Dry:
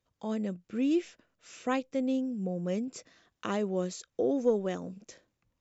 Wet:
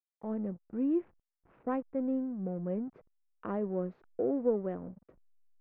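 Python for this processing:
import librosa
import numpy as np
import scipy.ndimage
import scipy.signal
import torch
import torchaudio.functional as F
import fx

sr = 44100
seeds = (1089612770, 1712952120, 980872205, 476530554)

y = fx.backlash(x, sr, play_db=-42.5)
y = scipy.signal.sosfilt(scipy.signal.bessel(4, 1100.0, 'lowpass', norm='mag', fs=sr, output='sos'), y)
y = F.gain(torch.from_numpy(y), -2.0).numpy()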